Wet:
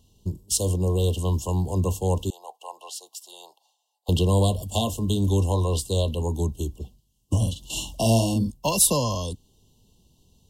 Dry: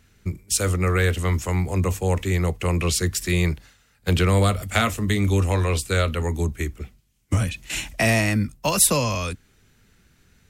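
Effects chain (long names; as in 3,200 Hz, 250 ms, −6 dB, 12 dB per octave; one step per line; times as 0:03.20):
0:02.30–0:04.09: four-pole ladder high-pass 710 Hz, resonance 65%
0:07.38–0:08.51: double-tracking delay 44 ms −5 dB
linear-phase brick-wall band-stop 1,100–2,700 Hz
level −1.5 dB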